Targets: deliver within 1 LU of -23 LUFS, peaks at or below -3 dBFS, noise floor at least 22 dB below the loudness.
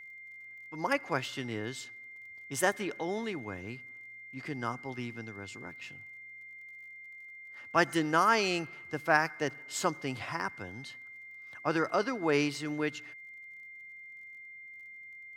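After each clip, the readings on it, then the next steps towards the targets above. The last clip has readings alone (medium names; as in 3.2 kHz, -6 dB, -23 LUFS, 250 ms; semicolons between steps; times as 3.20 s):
tick rate 34 per s; steady tone 2.1 kHz; tone level -46 dBFS; loudness -32.5 LUFS; peak level -9.0 dBFS; loudness target -23.0 LUFS
-> de-click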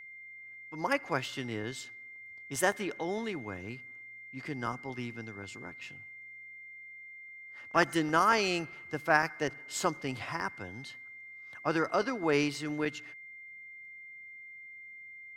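tick rate 0 per s; steady tone 2.1 kHz; tone level -46 dBFS
-> band-stop 2.1 kHz, Q 30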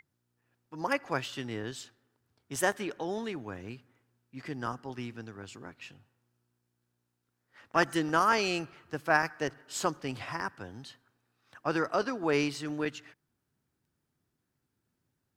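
steady tone not found; loudness -32.0 LUFS; peak level -9.5 dBFS; loudness target -23.0 LUFS
-> trim +9 dB; peak limiter -3 dBFS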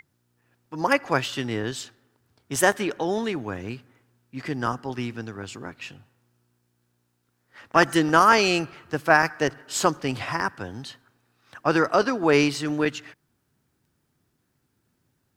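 loudness -23.5 LUFS; peak level -3.0 dBFS; noise floor -73 dBFS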